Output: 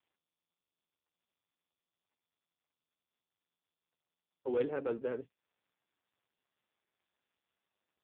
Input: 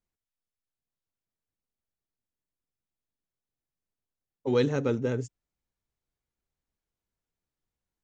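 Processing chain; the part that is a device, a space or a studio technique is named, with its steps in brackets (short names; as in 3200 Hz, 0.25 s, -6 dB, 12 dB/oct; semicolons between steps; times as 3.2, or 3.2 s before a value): telephone (BPF 370–3500 Hz; soft clip -19.5 dBFS, distortion -19 dB; gain -3 dB; AMR-NB 5.15 kbps 8000 Hz)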